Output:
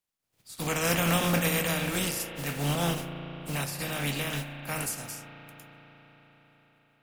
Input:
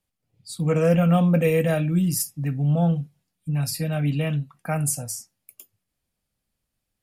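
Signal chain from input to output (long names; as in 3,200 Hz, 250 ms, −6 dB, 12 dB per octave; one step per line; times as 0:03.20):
compressing power law on the bin magnitudes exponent 0.39
convolution reverb RT60 5.2 s, pre-delay 35 ms, DRR 6 dB
level −8.5 dB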